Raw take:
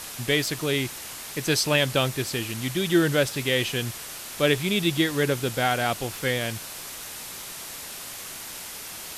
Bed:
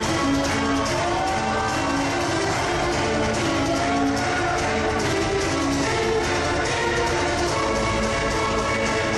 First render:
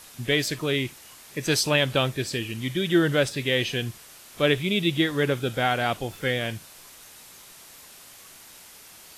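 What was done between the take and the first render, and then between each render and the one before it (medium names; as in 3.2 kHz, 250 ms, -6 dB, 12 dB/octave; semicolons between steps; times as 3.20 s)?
noise print and reduce 10 dB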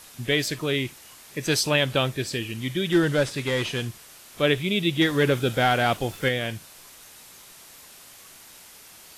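2.92–3.87 s: one-bit delta coder 64 kbps, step -37 dBFS; 5.01–6.29 s: waveshaping leveller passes 1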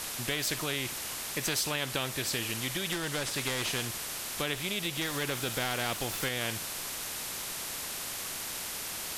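compression 4:1, threshold -26 dBFS, peak gain reduction 9.5 dB; spectrum-flattening compressor 2:1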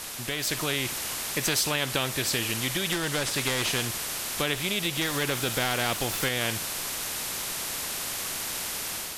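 level rider gain up to 5 dB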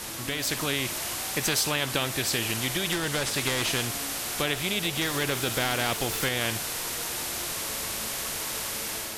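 add bed -21 dB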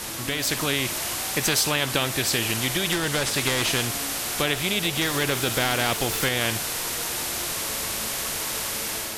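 trim +3.5 dB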